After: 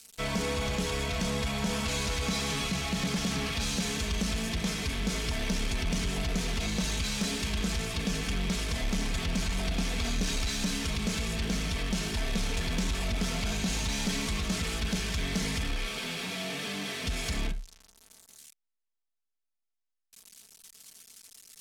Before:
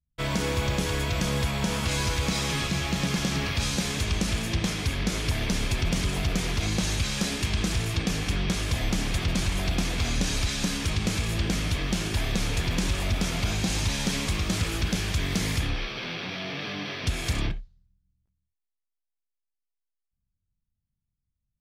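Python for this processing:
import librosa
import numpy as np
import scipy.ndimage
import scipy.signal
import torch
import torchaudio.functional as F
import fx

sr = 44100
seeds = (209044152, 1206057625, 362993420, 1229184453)

y = x + 0.5 * 10.0 ** (-27.5 / 20.0) * np.diff(np.sign(x), prepend=np.sign(x[:1]))
y = scipy.signal.sosfilt(scipy.signal.butter(2, 8400.0, 'lowpass', fs=sr, output='sos'), y)
y = y + 0.62 * np.pad(y, (int(4.5 * sr / 1000.0), 0))[:len(y)]
y = 10.0 ** (-19.0 / 20.0) * np.tanh(y / 10.0 ** (-19.0 / 20.0))
y = F.gain(torch.from_numpy(y), -3.5).numpy()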